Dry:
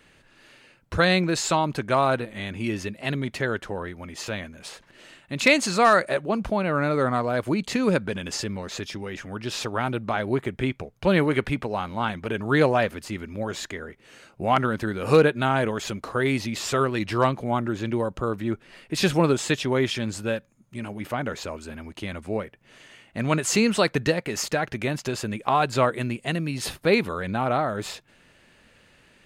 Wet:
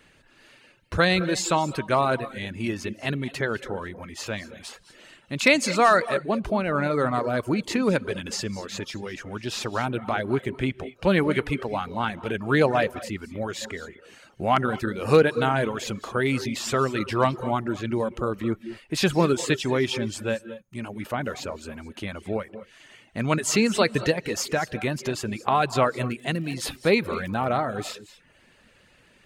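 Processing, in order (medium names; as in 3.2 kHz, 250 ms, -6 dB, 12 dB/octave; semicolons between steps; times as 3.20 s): 25.95–27.46 s: crackle 20 per s -33 dBFS; gated-style reverb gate 250 ms rising, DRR 11.5 dB; reverb removal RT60 0.52 s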